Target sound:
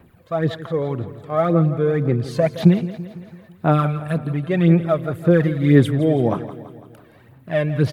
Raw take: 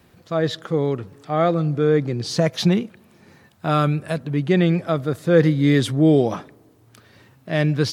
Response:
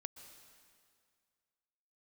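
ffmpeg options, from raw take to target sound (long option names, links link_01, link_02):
-filter_complex "[0:a]equalizer=frequency=5500:width=1:gain=-14.5,aphaser=in_gain=1:out_gain=1:delay=1.9:decay=0.59:speed=1.9:type=sinusoidal,asplit=2[link_01][link_02];[link_02]aecho=0:1:167|334|501|668|835|1002:0.2|0.112|0.0626|0.035|0.0196|0.011[link_03];[link_01][link_03]amix=inputs=2:normalize=0,volume=-1.5dB"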